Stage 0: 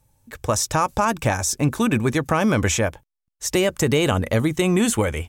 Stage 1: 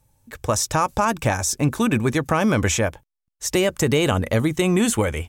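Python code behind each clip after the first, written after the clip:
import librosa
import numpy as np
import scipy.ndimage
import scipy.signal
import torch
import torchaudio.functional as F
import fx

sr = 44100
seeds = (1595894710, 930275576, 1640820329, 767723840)

y = x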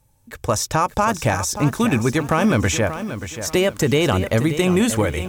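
y = fx.dynamic_eq(x, sr, hz=8600.0, q=1.1, threshold_db=-35.0, ratio=4.0, max_db=-4)
y = np.clip(10.0 ** (9.5 / 20.0) * y, -1.0, 1.0) / 10.0 ** (9.5 / 20.0)
y = fx.echo_crushed(y, sr, ms=582, feedback_pct=35, bits=7, wet_db=-10.5)
y = F.gain(torch.from_numpy(y), 1.5).numpy()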